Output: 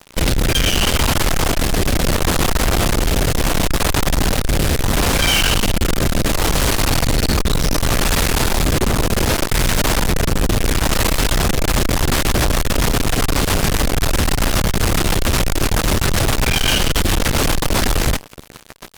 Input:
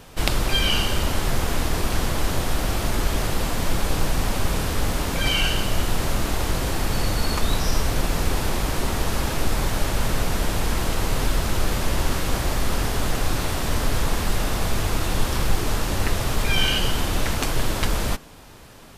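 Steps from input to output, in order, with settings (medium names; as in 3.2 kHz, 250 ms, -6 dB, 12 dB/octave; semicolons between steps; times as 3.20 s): 6.11–7.20 s: de-hum 52 Hz, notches 39; rotary cabinet horn 0.7 Hz, later 7.5 Hz, at 11.35 s; fuzz box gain 36 dB, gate -42 dBFS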